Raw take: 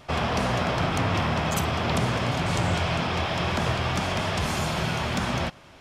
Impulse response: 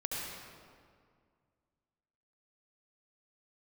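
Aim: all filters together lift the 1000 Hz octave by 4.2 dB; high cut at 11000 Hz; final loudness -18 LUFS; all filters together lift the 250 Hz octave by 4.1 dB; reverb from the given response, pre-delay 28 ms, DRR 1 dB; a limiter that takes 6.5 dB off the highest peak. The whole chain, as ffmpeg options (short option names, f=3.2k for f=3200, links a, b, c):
-filter_complex "[0:a]lowpass=11k,equalizer=f=250:t=o:g=5.5,equalizer=f=1k:t=o:g=5,alimiter=limit=-15.5dB:level=0:latency=1,asplit=2[a][b];[1:a]atrim=start_sample=2205,adelay=28[c];[b][c]afir=irnorm=-1:irlink=0,volume=-4.5dB[d];[a][d]amix=inputs=2:normalize=0,volume=4.5dB"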